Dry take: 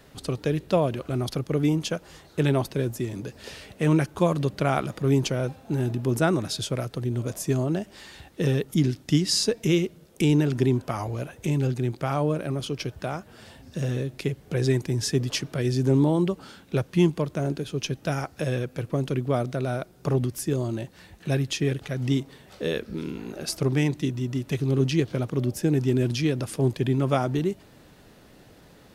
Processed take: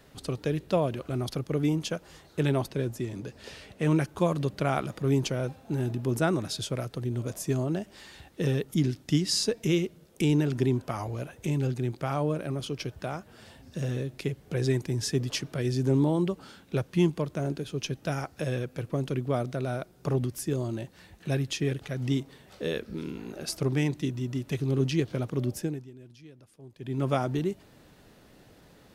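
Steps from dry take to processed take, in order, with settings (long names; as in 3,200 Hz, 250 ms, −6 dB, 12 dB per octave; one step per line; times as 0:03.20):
0:02.66–0:03.86: high-shelf EQ 11,000 Hz −8 dB
0:25.58–0:27.03: duck −22.5 dB, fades 0.36 s quadratic
level −3.5 dB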